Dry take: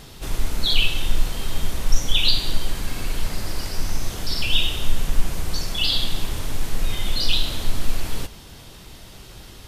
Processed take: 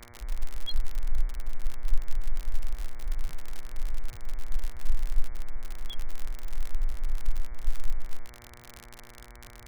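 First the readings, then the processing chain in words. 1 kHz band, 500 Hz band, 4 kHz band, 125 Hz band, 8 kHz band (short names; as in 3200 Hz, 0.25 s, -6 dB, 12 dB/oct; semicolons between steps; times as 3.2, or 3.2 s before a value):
-13.5 dB, -16.0 dB, -24.0 dB, -8.5 dB, -17.5 dB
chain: loudest bins only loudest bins 1; buzz 120 Hz, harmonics 19, -55 dBFS -2 dB/oct; crackle 62/s -29 dBFS; gain +1 dB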